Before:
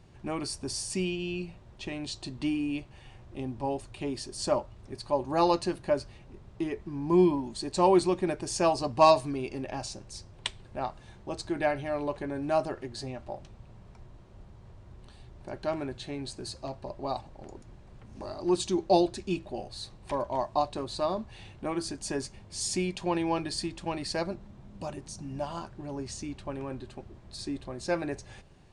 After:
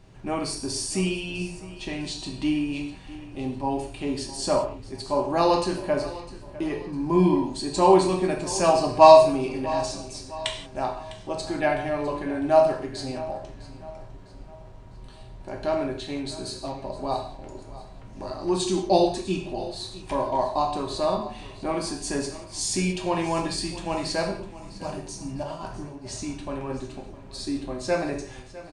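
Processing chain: 25.43–26.05 negative-ratio compressor -41 dBFS, ratio -0.5; on a send: feedback echo 0.654 s, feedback 42%, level -17 dB; on the sum: non-linear reverb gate 0.21 s falling, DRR 0.5 dB; gain +2.5 dB

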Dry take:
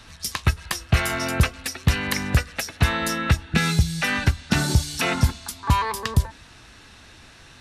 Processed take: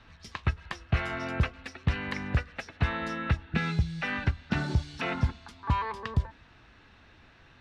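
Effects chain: LPF 2800 Hz 12 dB/oct; gain -7.5 dB

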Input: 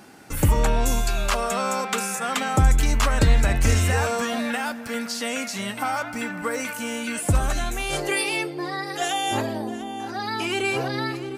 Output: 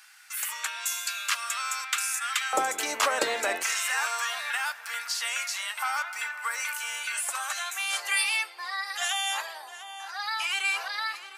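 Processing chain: HPF 1400 Hz 24 dB/oct, from 2.53 s 410 Hz, from 3.63 s 1000 Hz

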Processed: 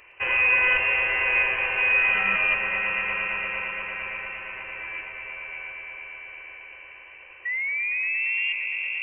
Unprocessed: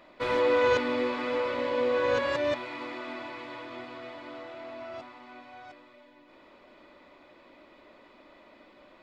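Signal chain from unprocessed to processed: painted sound fall, 7.45–8.53, 210–1100 Hz -31 dBFS; inverted band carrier 3000 Hz; swelling echo 0.115 s, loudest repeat 5, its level -10.5 dB; gain +3.5 dB

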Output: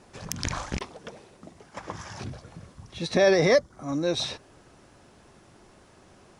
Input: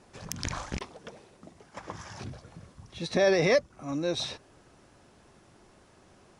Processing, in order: 3.34–4.07 bell 2600 Hz -12.5 dB 0.24 oct; gain +3.5 dB

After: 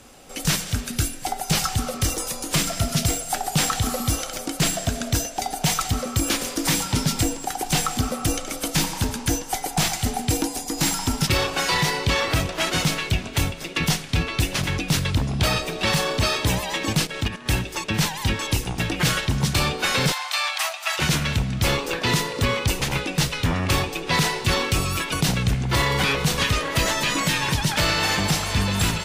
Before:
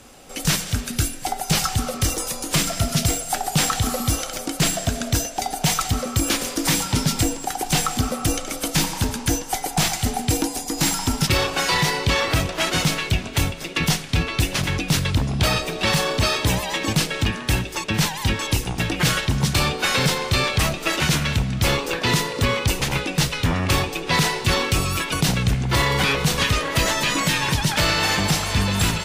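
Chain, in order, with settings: 17.05–17.46 level quantiser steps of 10 dB; 20.12–20.99 steep high-pass 650 Hz 72 dB/oct; gain -1.5 dB

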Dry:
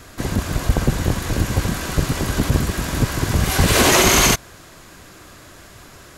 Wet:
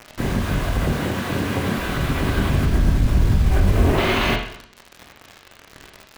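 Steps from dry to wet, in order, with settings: 0.88–1.78 HPF 140 Hz 12 dB/oct; 2.65–3.98 tilt -4.5 dB/oct; LPF 3600 Hz 24 dB/oct; limiter -13 dBFS, peak gain reduction 25 dB; bit-crush 6-bit; reverb RT60 0.65 s, pre-delay 21 ms, DRR 1 dB

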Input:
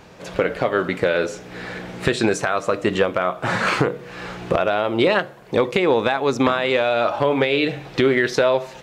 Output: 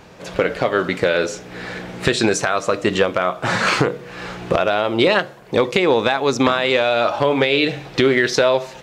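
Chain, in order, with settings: dynamic EQ 5500 Hz, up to +6 dB, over -41 dBFS, Q 0.78; gain +1.5 dB

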